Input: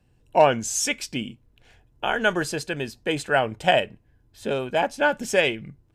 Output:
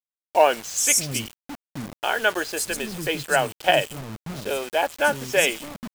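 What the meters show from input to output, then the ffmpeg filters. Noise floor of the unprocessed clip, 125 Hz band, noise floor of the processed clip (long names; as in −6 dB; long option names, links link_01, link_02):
−62 dBFS, −1.0 dB, below −85 dBFS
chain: -filter_complex "[0:a]aemphasis=mode=production:type=50kf,acrossover=split=280|5000[link_01][link_02][link_03];[link_03]adelay=130[link_04];[link_01]adelay=620[link_05];[link_05][link_02][link_04]amix=inputs=3:normalize=0,acrusher=bits=5:mix=0:aa=0.000001"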